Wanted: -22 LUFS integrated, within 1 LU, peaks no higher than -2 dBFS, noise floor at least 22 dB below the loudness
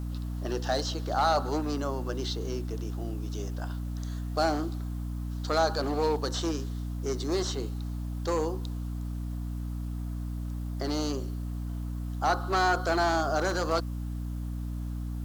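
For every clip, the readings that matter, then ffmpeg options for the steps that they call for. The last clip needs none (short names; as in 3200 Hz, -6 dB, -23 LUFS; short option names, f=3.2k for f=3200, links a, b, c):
hum 60 Hz; harmonics up to 300 Hz; hum level -31 dBFS; loudness -31.0 LUFS; peak -15.0 dBFS; loudness target -22.0 LUFS
-> -af "bandreject=f=60:t=h:w=6,bandreject=f=120:t=h:w=6,bandreject=f=180:t=h:w=6,bandreject=f=240:t=h:w=6,bandreject=f=300:t=h:w=6"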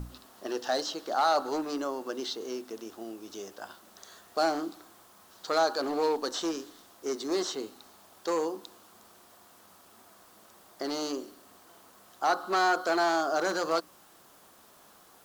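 hum none; loudness -30.5 LUFS; peak -16.5 dBFS; loudness target -22.0 LUFS
-> -af "volume=8.5dB"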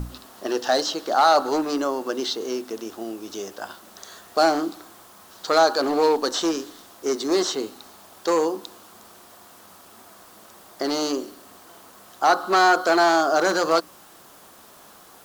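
loudness -22.0 LUFS; peak -8.0 dBFS; noise floor -49 dBFS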